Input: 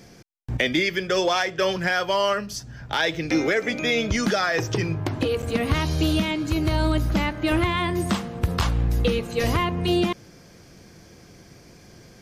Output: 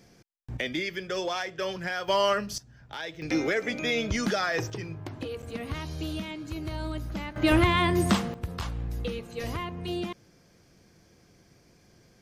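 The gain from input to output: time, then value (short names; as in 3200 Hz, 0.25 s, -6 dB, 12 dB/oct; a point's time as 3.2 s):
-9 dB
from 2.08 s -2 dB
from 2.58 s -14 dB
from 3.22 s -5 dB
from 4.7 s -12 dB
from 7.36 s +0.5 dB
from 8.34 s -11 dB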